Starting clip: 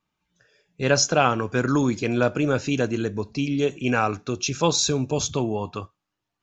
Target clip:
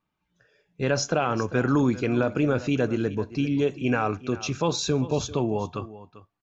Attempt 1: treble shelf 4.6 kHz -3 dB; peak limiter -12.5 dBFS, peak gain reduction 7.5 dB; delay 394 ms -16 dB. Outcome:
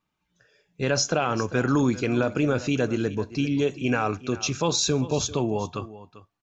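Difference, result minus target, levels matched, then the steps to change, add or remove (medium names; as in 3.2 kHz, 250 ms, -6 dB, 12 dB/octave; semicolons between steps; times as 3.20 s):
8 kHz band +5.5 dB
change: treble shelf 4.6 kHz -13.5 dB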